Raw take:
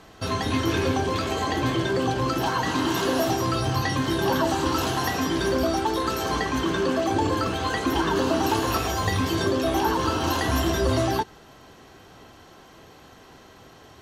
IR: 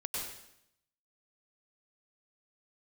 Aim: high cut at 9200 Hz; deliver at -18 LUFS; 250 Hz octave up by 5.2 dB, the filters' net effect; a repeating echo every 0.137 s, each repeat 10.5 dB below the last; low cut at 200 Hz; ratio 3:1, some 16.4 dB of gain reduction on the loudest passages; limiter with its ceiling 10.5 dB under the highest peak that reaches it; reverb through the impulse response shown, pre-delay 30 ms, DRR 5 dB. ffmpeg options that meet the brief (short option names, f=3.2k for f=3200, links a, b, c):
-filter_complex "[0:a]highpass=200,lowpass=9.2k,equalizer=f=250:t=o:g=8,acompressor=threshold=-40dB:ratio=3,alimiter=level_in=10dB:limit=-24dB:level=0:latency=1,volume=-10dB,aecho=1:1:137|274|411:0.299|0.0896|0.0269,asplit=2[a][b];[1:a]atrim=start_sample=2205,adelay=30[c];[b][c]afir=irnorm=-1:irlink=0,volume=-7.5dB[d];[a][d]amix=inputs=2:normalize=0,volume=23.5dB"